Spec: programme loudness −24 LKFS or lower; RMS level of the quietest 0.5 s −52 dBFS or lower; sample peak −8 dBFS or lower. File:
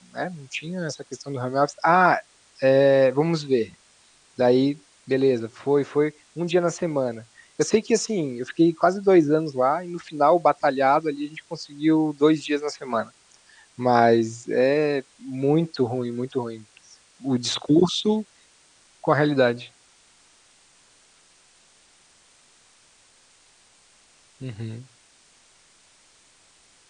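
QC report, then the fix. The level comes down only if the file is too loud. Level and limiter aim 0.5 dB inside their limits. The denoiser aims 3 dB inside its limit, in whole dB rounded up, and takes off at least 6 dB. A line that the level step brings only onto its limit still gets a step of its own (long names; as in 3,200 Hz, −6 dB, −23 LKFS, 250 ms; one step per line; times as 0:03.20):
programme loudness −22.5 LKFS: out of spec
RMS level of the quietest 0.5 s −57 dBFS: in spec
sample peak −4.5 dBFS: out of spec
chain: level −2 dB
brickwall limiter −8.5 dBFS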